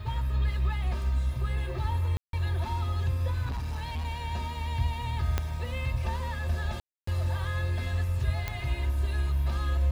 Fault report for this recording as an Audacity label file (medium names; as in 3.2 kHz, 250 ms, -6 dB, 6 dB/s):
2.170000	2.330000	dropout 162 ms
3.450000	4.070000	clipped -29 dBFS
5.380000	5.380000	pop -13 dBFS
6.800000	7.070000	dropout 274 ms
8.480000	8.480000	pop -16 dBFS